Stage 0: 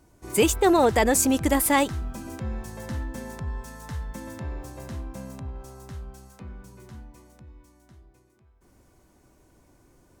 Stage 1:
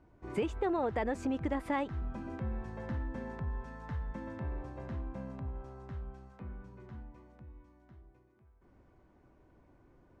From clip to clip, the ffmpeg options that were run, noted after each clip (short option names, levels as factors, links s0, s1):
-af "lowpass=2100,acompressor=threshold=0.0398:ratio=3,volume=0.631"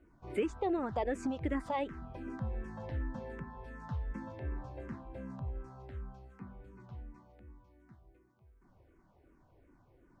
-filter_complex "[0:a]asplit=2[s0][s1];[s1]afreqshift=-2.7[s2];[s0][s2]amix=inputs=2:normalize=1,volume=1.19"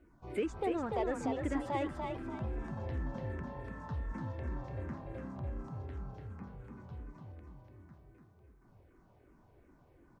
-filter_complex "[0:a]asplit=2[s0][s1];[s1]asoftclip=type=tanh:threshold=0.0106,volume=0.398[s2];[s0][s2]amix=inputs=2:normalize=0,asplit=5[s3][s4][s5][s6][s7];[s4]adelay=292,afreqshift=35,volume=0.596[s8];[s5]adelay=584,afreqshift=70,volume=0.202[s9];[s6]adelay=876,afreqshift=105,volume=0.0692[s10];[s7]adelay=1168,afreqshift=140,volume=0.0234[s11];[s3][s8][s9][s10][s11]amix=inputs=5:normalize=0,volume=0.75"